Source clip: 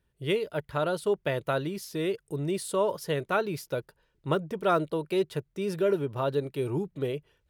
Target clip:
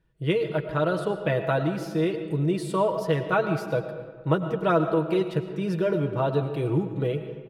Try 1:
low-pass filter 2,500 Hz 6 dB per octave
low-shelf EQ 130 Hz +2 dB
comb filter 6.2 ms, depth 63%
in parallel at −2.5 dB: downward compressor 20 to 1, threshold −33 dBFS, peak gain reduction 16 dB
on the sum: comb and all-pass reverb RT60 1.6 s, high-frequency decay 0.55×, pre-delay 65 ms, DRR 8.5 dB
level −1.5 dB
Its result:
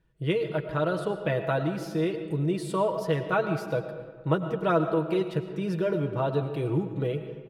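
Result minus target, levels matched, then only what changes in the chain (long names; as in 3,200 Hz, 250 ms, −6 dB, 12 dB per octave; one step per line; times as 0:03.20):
downward compressor: peak gain reduction +9.5 dB
change: downward compressor 20 to 1, threshold −23 dBFS, peak gain reduction 6.5 dB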